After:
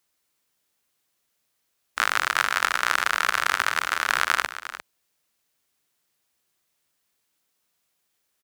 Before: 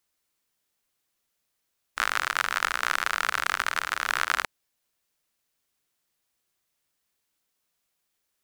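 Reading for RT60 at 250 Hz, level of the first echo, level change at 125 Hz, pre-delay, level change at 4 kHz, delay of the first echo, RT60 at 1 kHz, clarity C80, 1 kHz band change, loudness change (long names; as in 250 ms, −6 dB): no reverb audible, −13.0 dB, can't be measured, no reverb audible, +3.5 dB, 352 ms, no reverb audible, no reverb audible, +3.5 dB, +3.5 dB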